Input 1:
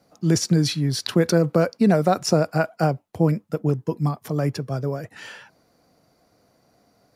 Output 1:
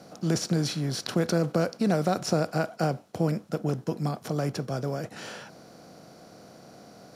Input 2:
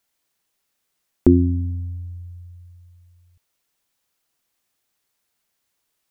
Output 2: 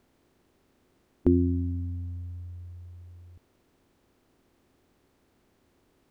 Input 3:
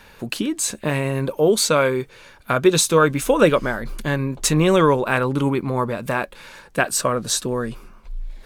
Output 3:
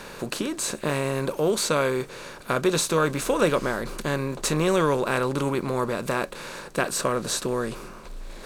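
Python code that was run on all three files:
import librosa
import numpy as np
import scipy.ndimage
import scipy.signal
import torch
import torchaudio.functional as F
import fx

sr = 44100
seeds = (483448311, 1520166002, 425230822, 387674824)

y = fx.bin_compress(x, sr, power=0.6)
y = F.gain(torch.from_numpy(y), -9.0).numpy()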